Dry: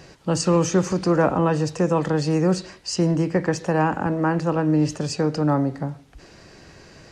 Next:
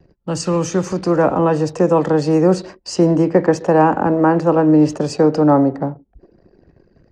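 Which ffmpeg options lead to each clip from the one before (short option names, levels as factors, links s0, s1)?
-filter_complex "[0:a]anlmdn=0.251,acrossover=split=240|1100|3700[s0][s1][s2][s3];[s1]dynaudnorm=f=350:g=7:m=4.22[s4];[s0][s4][s2][s3]amix=inputs=4:normalize=0"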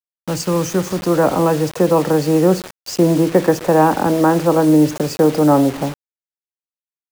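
-af "acrusher=bits=4:mix=0:aa=0.000001"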